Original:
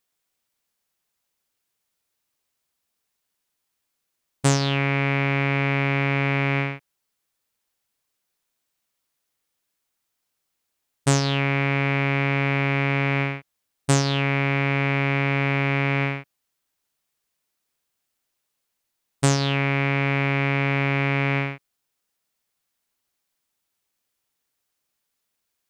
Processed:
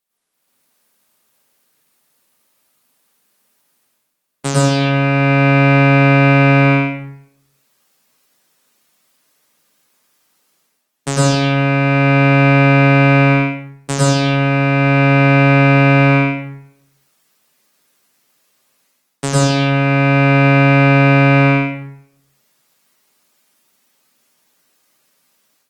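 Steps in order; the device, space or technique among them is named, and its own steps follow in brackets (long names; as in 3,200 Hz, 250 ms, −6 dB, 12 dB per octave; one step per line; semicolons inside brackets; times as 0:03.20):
far-field microphone of a smart speaker (convolution reverb RT60 0.70 s, pre-delay 94 ms, DRR −6.5 dB; high-pass filter 140 Hz 24 dB per octave; automatic gain control gain up to 12 dB; level −1 dB; Opus 24 kbit/s 48,000 Hz)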